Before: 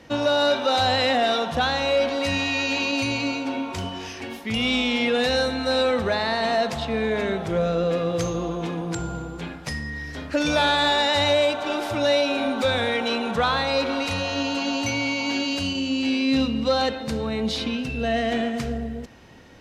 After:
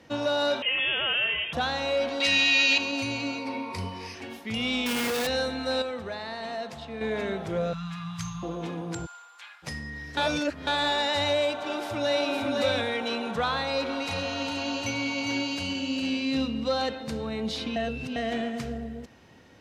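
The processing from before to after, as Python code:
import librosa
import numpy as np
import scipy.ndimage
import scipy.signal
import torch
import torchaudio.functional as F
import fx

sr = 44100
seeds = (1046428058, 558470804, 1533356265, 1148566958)

y = fx.freq_invert(x, sr, carrier_hz=3400, at=(0.62, 1.53))
y = fx.weighting(y, sr, curve='D', at=(2.2, 2.78))
y = fx.ripple_eq(y, sr, per_octave=0.9, db=11, at=(3.38, 4.15))
y = fx.schmitt(y, sr, flips_db=-37.5, at=(4.86, 5.27))
y = fx.ellip_bandstop(y, sr, low_hz=180.0, high_hz=950.0, order=3, stop_db=50, at=(7.73, 8.43))
y = fx.highpass(y, sr, hz=1100.0, slope=24, at=(9.05, 9.62), fade=0.02)
y = fx.echo_throw(y, sr, start_s=11.55, length_s=0.75, ms=510, feedback_pct=10, wet_db=-3.0)
y = fx.echo_single(y, sr, ms=406, db=-6.5, at=(13.68, 16.35))
y = fx.edit(y, sr, fx.clip_gain(start_s=5.82, length_s=1.19, db=-6.5),
    fx.reverse_span(start_s=10.17, length_s=0.5),
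    fx.reverse_span(start_s=17.76, length_s=0.4), tone=tone)
y = scipy.signal.sosfilt(scipy.signal.butter(2, 62.0, 'highpass', fs=sr, output='sos'), y)
y = F.gain(torch.from_numpy(y), -5.5).numpy()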